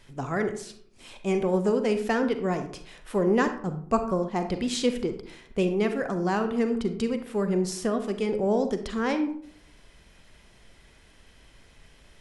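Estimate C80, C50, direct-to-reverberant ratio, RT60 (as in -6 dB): 13.0 dB, 9.5 dB, 7.5 dB, 0.60 s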